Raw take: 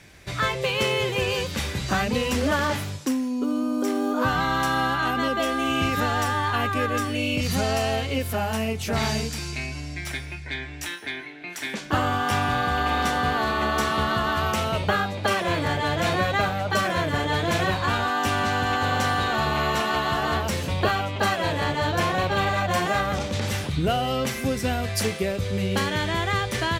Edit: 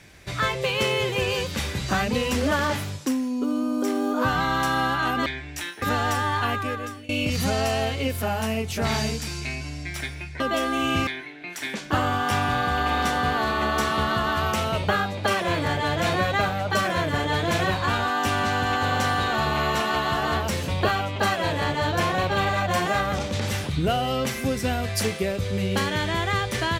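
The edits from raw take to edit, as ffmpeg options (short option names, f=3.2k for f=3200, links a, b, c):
-filter_complex "[0:a]asplit=6[a][b][c][d][e][f];[a]atrim=end=5.262[g];[b]atrim=start=10.508:end=11.072[h];[c]atrim=start=5.928:end=7.2,asetpts=PTS-STARTPTS,afade=t=out:st=0.612:d=0.66:silence=0.0841395[i];[d]atrim=start=7.2:end=10.512,asetpts=PTS-STARTPTS,afade=t=in:d=0.004:c=hsin:silence=0.0841395[j];[e]atrim=start=5.258:end=5.932[k];[f]atrim=start=11.068[l];[g][h]acrossfade=d=0.004:c1=hsin:c2=hsin[m];[i][j]concat=n=2:v=0:a=1[n];[m][n]acrossfade=d=0.004:c1=hsin:c2=hsin[o];[o][k]acrossfade=d=0.004:c1=hsin:c2=hsin[p];[p][l]acrossfade=d=0.004:c1=hsin:c2=hsin"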